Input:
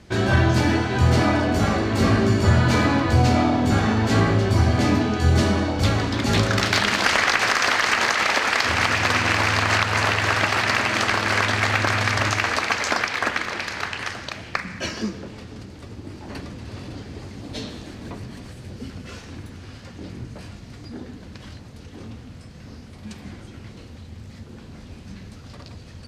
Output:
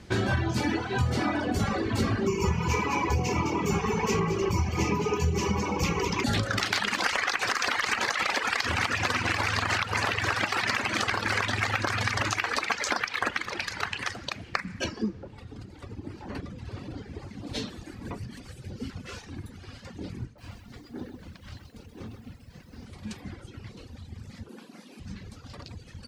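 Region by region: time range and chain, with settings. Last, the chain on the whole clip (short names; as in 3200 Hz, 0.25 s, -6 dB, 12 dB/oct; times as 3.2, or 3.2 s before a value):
2.27–6.24 ripple EQ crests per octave 0.77, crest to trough 15 dB + echo 0.209 s -6 dB
14.84–17.47 high shelf 2700 Hz -10 dB + mismatched tape noise reduction encoder only
20.25–22.86 high shelf 7000 Hz -7 dB + tremolo 3.9 Hz, depth 69% + lo-fi delay 0.129 s, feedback 35%, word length 10-bit, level -3.5 dB
24.49–25 steep high-pass 180 Hz + bell 11000 Hz +9.5 dB 0.31 oct
whole clip: reverb removal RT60 1.8 s; notch 640 Hz, Q 12; compressor, threshold -23 dBFS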